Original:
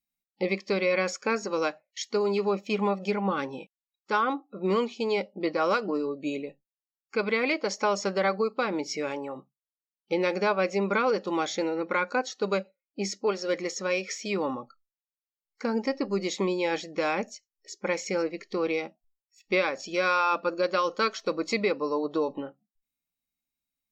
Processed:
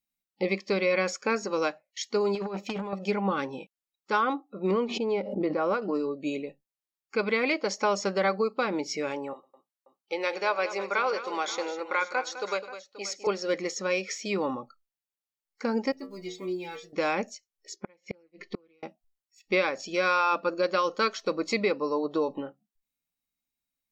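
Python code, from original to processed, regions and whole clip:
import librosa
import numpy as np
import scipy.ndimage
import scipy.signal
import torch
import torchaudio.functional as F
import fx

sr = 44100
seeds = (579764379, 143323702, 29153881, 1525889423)

y = fx.chain(x, sr, fx.over_compress(threshold_db=-29.0, ratio=-0.5),
    fx.transformer_sat(knee_hz=960.0), at=(2.35, 2.93))
y = fx.chain(y, sr, fx.lowpass(hz=1000.0, slope=6),
    fx.pre_swell(db_per_s=58.0), at=(4.71, 5.82))
y = fx.chain(y, sr, fx.highpass(hz=560.0, slope=12),
    fx.echo_multitap(ms=(103, 206, 531), db=(-20.0, -12.5, -15.5)), at=(9.33, 13.27))
y = fx.chain(y, sr, fx.block_float(bits=7),
    fx.peak_eq(hz=1000.0, db=-7.0, octaves=0.26),
    fx.stiff_resonator(f0_hz=86.0, decay_s=0.38, stiffness=0.008), at=(15.92, 16.93))
y = fx.chain(y, sr, fx.lowpass(hz=3800.0, slope=12),
    fx.comb(ms=5.6, depth=0.8),
    fx.gate_flip(shuts_db=-20.0, range_db=-37), at=(17.76, 18.83))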